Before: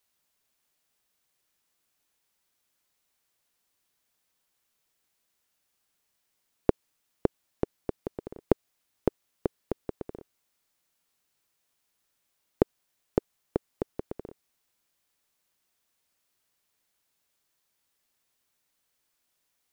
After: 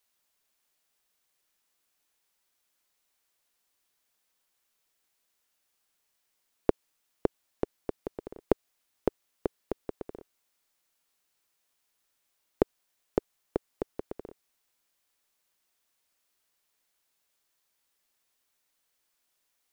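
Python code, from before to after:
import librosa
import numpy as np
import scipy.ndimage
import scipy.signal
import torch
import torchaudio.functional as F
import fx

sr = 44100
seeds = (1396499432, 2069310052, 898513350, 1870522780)

y = fx.peak_eq(x, sr, hz=120.0, db=-6.5, octaves=2.1)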